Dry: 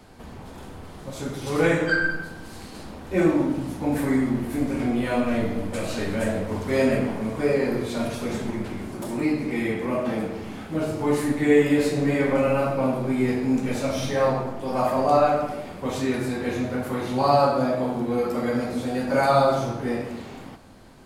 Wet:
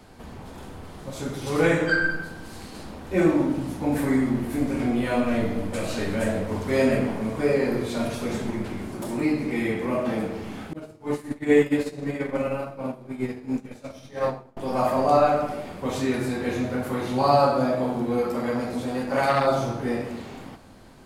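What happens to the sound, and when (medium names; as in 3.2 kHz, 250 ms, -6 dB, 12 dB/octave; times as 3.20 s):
10.73–14.57 s: expander -16 dBFS
18.22–19.47 s: transformer saturation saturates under 1.2 kHz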